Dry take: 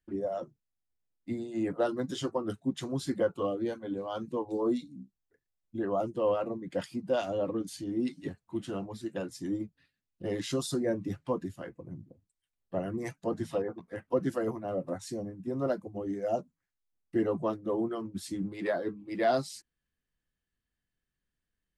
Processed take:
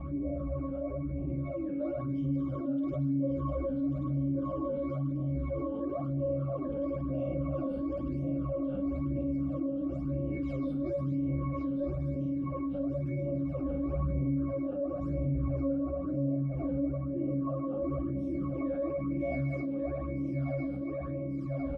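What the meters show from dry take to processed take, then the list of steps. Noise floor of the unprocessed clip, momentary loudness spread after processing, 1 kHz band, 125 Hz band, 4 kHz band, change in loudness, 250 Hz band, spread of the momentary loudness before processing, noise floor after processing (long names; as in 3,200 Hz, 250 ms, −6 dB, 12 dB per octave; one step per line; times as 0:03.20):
below −85 dBFS, 3 LU, −6.0 dB, +10.0 dB, below −20 dB, +0.5 dB, +3.5 dB, 10 LU, −36 dBFS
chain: feedback delay that plays each chunk backwards 568 ms, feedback 73%, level −2 dB
wind on the microphone 450 Hz −38 dBFS
resonances in every octave C#, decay 0.53 s
on a send: reverse bouncing-ball delay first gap 50 ms, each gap 1.1×, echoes 5
on the sum: all-pass phaser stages 12, 1 Hz, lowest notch 110–1,500 Hz
envelope flattener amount 70%
level +6 dB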